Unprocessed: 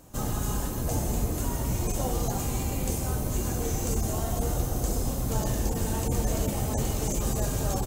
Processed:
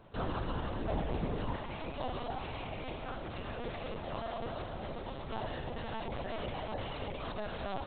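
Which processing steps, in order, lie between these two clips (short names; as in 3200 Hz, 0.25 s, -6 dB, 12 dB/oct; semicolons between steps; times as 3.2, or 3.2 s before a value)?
HPF 240 Hz 6 dB/oct, from 1.56 s 800 Hz; LPC vocoder at 8 kHz pitch kept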